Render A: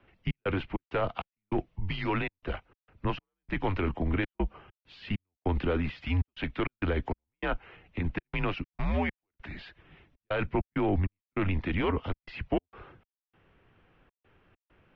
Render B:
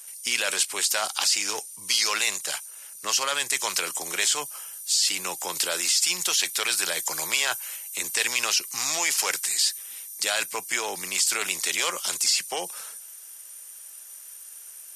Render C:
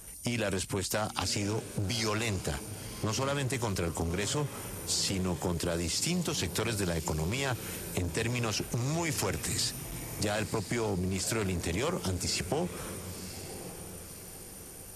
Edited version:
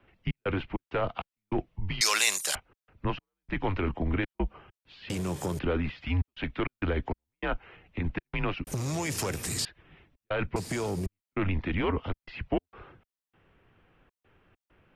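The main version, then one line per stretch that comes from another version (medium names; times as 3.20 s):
A
2.01–2.55 s: from B
5.10–5.59 s: from C
8.67–9.65 s: from C
10.56–11.06 s: from C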